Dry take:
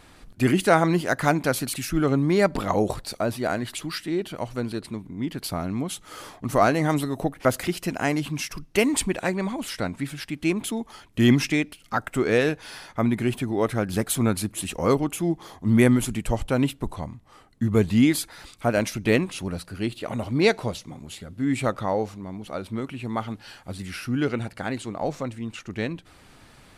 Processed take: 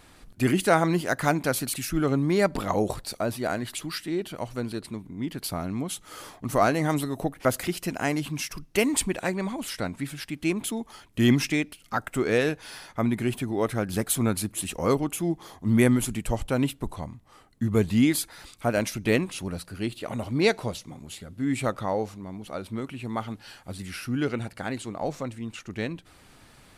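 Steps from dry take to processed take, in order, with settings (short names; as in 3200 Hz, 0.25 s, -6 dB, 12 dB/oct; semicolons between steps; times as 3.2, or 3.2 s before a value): high shelf 7800 Hz +5 dB; gain -2.5 dB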